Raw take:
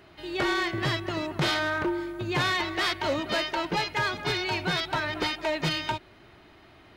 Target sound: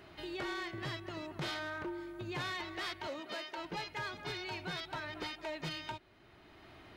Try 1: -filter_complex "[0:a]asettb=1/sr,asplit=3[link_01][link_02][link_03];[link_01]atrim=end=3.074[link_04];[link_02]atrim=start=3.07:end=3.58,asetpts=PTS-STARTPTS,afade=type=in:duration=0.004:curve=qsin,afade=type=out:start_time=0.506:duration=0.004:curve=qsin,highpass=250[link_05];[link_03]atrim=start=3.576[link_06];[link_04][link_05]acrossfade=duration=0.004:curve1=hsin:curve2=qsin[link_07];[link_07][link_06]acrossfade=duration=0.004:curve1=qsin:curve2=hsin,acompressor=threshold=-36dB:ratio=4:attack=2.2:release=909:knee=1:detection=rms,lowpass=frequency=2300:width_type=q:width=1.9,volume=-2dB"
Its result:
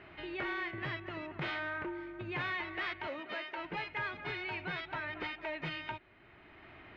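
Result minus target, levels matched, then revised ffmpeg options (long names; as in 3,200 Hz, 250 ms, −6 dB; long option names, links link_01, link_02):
2,000 Hz band +2.5 dB
-filter_complex "[0:a]asettb=1/sr,asplit=3[link_01][link_02][link_03];[link_01]atrim=end=3.074[link_04];[link_02]atrim=start=3.07:end=3.58,asetpts=PTS-STARTPTS,afade=type=in:duration=0.004:curve=qsin,afade=type=out:start_time=0.506:duration=0.004:curve=qsin,highpass=250[link_05];[link_03]atrim=start=3.576[link_06];[link_04][link_05]acrossfade=duration=0.004:curve1=hsin:curve2=qsin[link_07];[link_07][link_06]acrossfade=duration=0.004:curve1=qsin:curve2=hsin,acompressor=threshold=-36dB:ratio=4:attack=2.2:release=909:knee=1:detection=rms,volume=-2dB"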